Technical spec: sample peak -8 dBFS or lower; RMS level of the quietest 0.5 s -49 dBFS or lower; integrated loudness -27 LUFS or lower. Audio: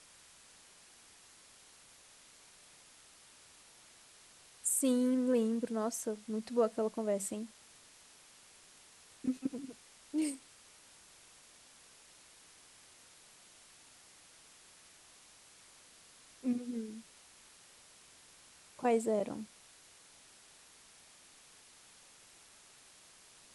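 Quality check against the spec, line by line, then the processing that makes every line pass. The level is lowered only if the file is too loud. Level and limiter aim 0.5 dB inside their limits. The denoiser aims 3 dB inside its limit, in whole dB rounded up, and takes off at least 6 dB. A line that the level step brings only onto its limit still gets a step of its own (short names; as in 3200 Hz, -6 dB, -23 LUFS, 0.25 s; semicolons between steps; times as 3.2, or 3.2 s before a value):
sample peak -19.0 dBFS: OK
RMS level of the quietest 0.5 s -60 dBFS: OK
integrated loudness -35.0 LUFS: OK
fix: none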